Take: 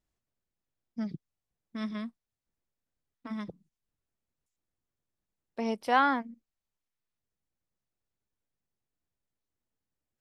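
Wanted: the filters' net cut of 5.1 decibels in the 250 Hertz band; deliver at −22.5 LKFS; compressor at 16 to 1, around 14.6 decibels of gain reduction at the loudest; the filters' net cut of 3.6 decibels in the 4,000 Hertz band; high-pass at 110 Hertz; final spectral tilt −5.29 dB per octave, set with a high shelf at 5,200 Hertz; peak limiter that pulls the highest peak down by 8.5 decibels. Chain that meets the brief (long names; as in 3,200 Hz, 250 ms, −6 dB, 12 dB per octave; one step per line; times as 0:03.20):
high-pass filter 110 Hz
parametric band 250 Hz −5.5 dB
parametric band 4,000 Hz −8.5 dB
high-shelf EQ 5,200 Hz +8 dB
downward compressor 16 to 1, threshold −33 dBFS
level +22.5 dB
brickwall limiter −9 dBFS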